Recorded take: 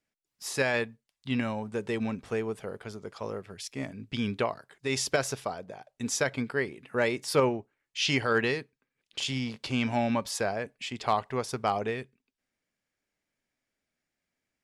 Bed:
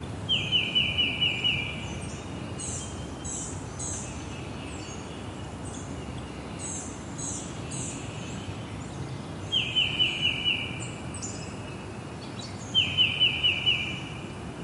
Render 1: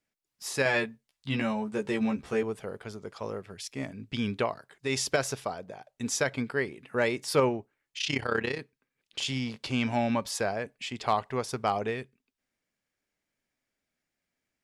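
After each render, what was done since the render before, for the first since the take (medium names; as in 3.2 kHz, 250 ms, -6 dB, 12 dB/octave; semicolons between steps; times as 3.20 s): 0.64–2.43 s: doubling 14 ms -2.5 dB; 7.98–8.59 s: AM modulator 32 Hz, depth 70%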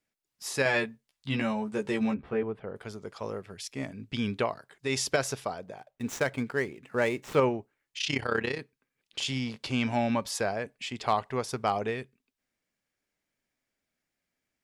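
2.14–2.76 s: distance through air 440 m; 5.77–7.40 s: median filter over 9 samples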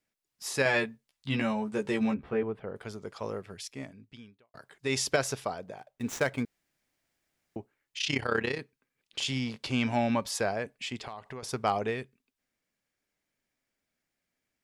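3.55–4.54 s: fade out quadratic; 6.45–7.56 s: room tone; 11.00–11.43 s: compression, threshold -38 dBFS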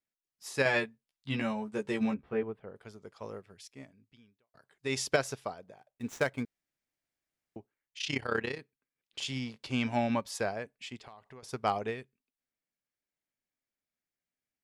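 upward expansion 1.5:1, over -45 dBFS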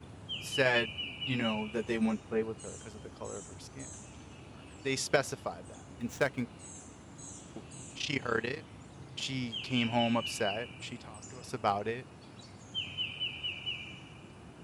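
add bed -13.5 dB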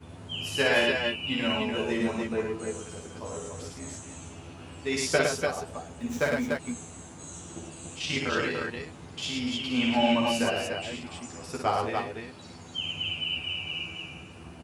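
doubling 12 ms -2 dB; multi-tap echo 56/107/276/293 ms -4.5/-3.5/-18/-4 dB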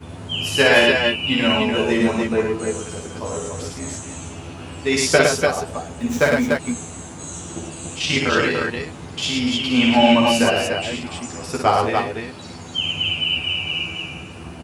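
trim +10 dB; peak limiter -2 dBFS, peak gain reduction 1 dB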